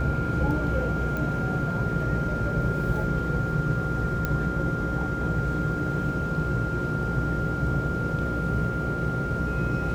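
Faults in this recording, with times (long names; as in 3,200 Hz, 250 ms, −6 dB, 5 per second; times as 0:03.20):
mains buzz 60 Hz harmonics 9 −32 dBFS
whistle 1,400 Hz −31 dBFS
0:01.17: click
0:04.25: click −13 dBFS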